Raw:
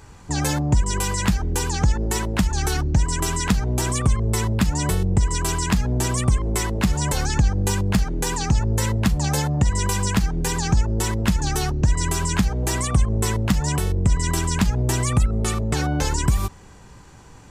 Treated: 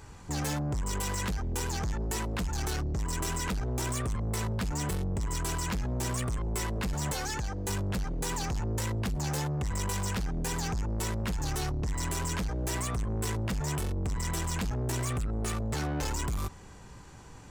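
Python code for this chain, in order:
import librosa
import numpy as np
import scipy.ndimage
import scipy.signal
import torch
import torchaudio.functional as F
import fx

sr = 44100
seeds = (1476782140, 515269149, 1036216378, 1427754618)

y = fx.bass_treble(x, sr, bass_db=-9, treble_db=0, at=(7.13, 7.69))
y = 10.0 ** (-25.0 / 20.0) * np.tanh(y / 10.0 ** (-25.0 / 20.0))
y = F.gain(torch.from_numpy(y), -3.5).numpy()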